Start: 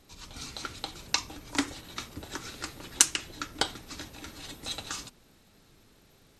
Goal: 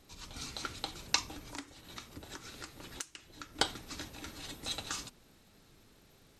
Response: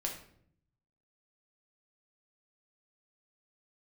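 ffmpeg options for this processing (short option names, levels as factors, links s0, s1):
-filter_complex "[0:a]asettb=1/sr,asplit=3[s0][s1][s2];[s0]atrim=end=1.454[s3];[s1]atrim=start=1.45:end=3.59,asetpts=PTS-STARTPTS,afade=t=in:d=0.004:c=qsin,afade=t=out:st=2.136:d=0.004:c=qsin,acompressor=threshold=0.00794:ratio=4[s4];[s2]atrim=start=3.586[s5];[s3][s4]acrossfade=d=0.004:c1=hsin:c2=qsin[s6];[s6][s5]acrossfade=d=0.004:c1=qsin:c2=hsin,volume=0.794"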